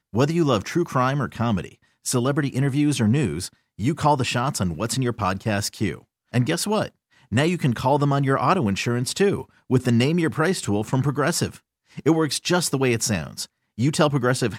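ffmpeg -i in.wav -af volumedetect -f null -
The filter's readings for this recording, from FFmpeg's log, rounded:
mean_volume: -22.4 dB
max_volume: -5.4 dB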